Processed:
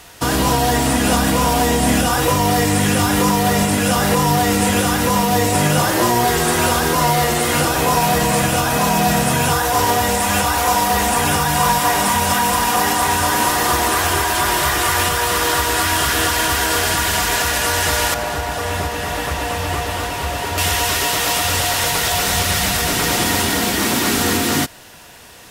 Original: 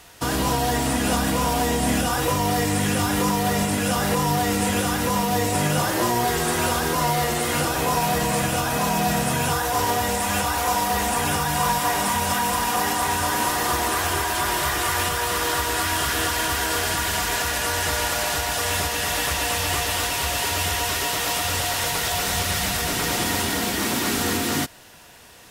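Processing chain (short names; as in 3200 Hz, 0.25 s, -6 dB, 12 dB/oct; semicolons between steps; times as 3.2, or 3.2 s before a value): 18.14–20.58 high shelf 2000 Hz -11.5 dB; gain +6 dB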